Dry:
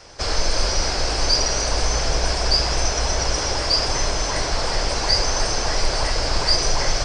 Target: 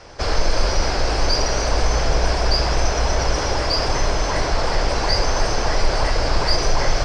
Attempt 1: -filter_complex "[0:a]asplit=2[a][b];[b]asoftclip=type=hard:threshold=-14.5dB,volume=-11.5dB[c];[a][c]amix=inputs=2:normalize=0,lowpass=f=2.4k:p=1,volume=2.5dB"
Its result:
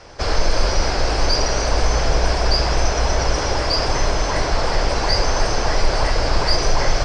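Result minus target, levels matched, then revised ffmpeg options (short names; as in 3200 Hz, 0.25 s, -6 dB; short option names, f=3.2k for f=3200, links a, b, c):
hard clip: distortion -9 dB
-filter_complex "[0:a]asplit=2[a][b];[b]asoftclip=type=hard:threshold=-23.5dB,volume=-11.5dB[c];[a][c]amix=inputs=2:normalize=0,lowpass=f=2.4k:p=1,volume=2.5dB"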